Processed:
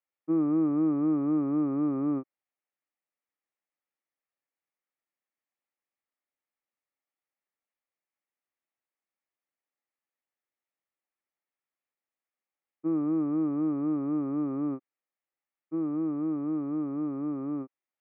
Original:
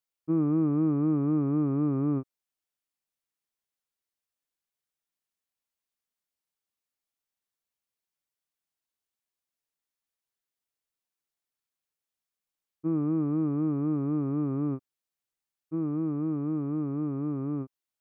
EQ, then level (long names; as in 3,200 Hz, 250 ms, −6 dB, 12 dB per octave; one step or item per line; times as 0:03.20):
loudspeaker in its box 380–2,000 Hz, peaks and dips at 430 Hz −8 dB, 680 Hz −5 dB, 1,000 Hz −8 dB, 1,500 Hz −9 dB
+7.0 dB